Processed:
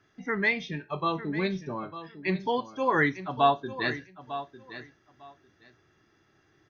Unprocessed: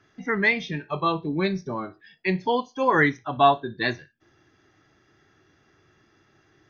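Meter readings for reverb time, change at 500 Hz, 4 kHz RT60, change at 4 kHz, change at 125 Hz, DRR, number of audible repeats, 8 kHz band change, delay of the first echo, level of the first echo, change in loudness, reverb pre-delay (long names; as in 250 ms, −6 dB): no reverb audible, −4.5 dB, no reverb audible, −4.0 dB, −4.0 dB, no reverb audible, 2, can't be measured, 901 ms, −13.0 dB, −5.0 dB, no reverb audible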